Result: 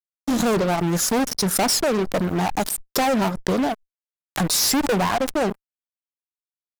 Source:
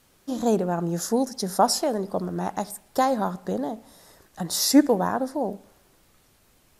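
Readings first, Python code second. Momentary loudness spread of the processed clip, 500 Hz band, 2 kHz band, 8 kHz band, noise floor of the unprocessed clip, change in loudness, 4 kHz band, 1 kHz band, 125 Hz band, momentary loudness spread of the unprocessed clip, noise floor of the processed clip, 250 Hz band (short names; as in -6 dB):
7 LU, +2.5 dB, +10.0 dB, +6.5 dB, -61 dBFS, +3.5 dB, +6.0 dB, +2.0 dB, +6.0 dB, 14 LU, under -85 dBFS, +2.0 dB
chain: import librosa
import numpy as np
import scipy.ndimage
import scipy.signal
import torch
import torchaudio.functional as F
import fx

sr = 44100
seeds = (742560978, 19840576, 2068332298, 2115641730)

y = fx.law_mismatch(x, sr, coded='mu')
y = fx.dereverb_blind(y, sr, rt60_s=1.8)
y = fx.fuzz(y, sr, gain_db=33.0, gate_db=-38.0)
y = fx.pre_swell(y, sr, db_per_s=66.0)
y = y * 10.0 ** (-4.5 / 20.0)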